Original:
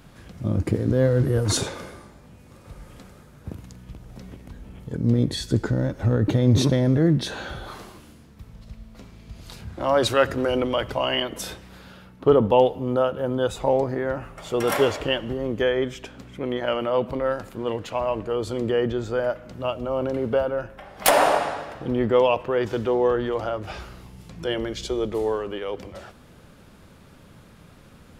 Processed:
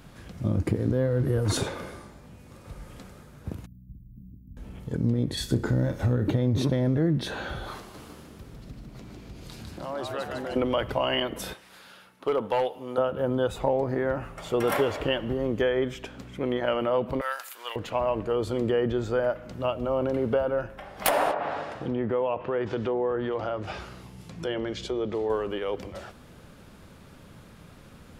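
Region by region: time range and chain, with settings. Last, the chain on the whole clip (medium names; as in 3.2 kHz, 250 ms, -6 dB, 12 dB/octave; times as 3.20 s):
3.66–4.57 s: inverse Chebyshev band-stop 760–8300 Hz, stop band 60 dB + tilt shelf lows -5 dB, about 1.4 kHz
5.37–6.30 s: treble shelf 5.1 kHz +7.5 dB + flutter echo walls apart 5.5 m, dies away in 0.22 s
7.79–10.56 s: compression 2:1, threshold -42 dBFS + frequency-shifting echo 152 ms, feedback 56%, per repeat +84 Hz, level -3.5 dB
11.53–12.98 s: high-pass 990 Hz 6 dB/octave + peaking EQ 10 kHz +5.5 dB 0.31 oct + hard clipper -17.5 dBFS
17.21–17.76 s: high-pass 940 Hz + tilt EQ +4.5 dB/octave
21.31–25.30 s: low-pass that closes with the level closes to 2 kHz, closed at -17 dBFS + high-pass 77 Hz + compression 2:1, threshold -27 dBFS
whole clip: dynamic bell 6.4 kHz, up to -7 dB, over -46 dBFS, Q 0.75; compression 6:1, threshold -20 dBFS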